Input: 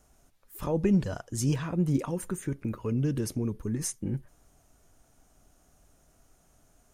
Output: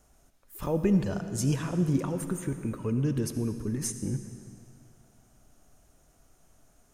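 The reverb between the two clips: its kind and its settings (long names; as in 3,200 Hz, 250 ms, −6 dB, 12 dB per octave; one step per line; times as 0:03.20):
comb and all-pass reverb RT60 2.4 s, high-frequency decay 0.95×, pre-delay 30 ms, DRR 9 dB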